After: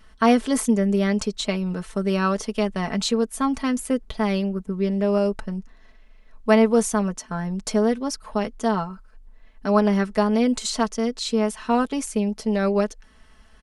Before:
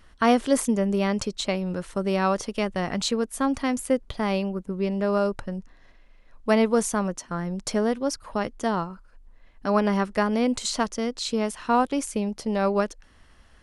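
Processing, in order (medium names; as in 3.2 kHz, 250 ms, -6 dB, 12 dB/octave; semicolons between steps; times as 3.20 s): comb 4.6 ms, depth 63%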